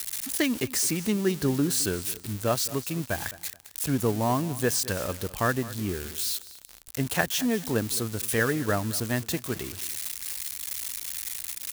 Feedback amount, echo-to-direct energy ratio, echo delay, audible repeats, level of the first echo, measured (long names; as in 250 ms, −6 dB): 25%, −17.5 dB, 214 ms, 2, −18.0 dB